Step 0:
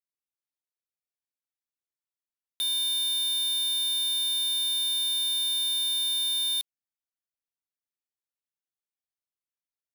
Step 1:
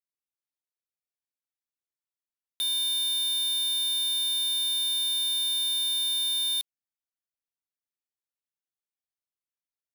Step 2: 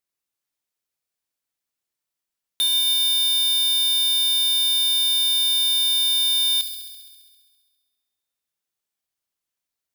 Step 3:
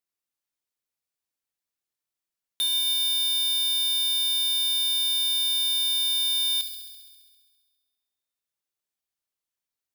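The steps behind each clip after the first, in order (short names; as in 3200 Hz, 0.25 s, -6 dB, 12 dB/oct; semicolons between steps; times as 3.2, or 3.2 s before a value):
nothing audible
thin delay 67 ms, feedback 75%, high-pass 3100 Hz, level -7 dB; gain +8 dB
two-slope reverb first 0.59 s, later 2 s, from -25 dB, DRR 20 dB; gain -4.5 dB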